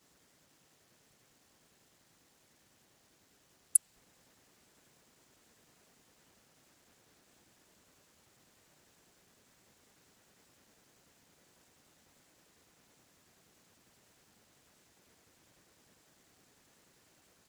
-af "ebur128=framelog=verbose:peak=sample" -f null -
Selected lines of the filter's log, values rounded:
Integrated loudness:
  I:         -29.2 LUFS
  Threshold: -55.5 LUFS
Loudness range:
  LRA:         0.0 LU
  Threshold: -64.8 LUFS
  LRA low:   -38.0 LUFS
  LRA high:  -38.0 LUFS
Sample peak:
  Peak:       -3.8 dBFS